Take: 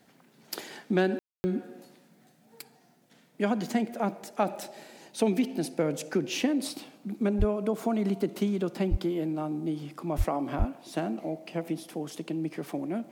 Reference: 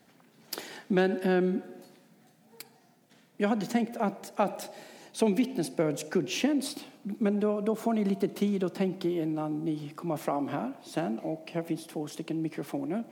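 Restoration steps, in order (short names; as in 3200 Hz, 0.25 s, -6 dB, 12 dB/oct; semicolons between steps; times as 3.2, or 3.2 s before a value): de-plosive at 7.38/8.9/10.17/10.58; room tone fill 1.19–1.44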